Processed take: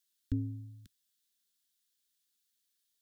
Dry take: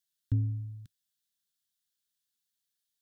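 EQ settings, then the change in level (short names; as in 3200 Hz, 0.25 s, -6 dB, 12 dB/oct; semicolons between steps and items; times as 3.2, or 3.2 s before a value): fixed phaser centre 310 Hz, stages 4; +4.5 dB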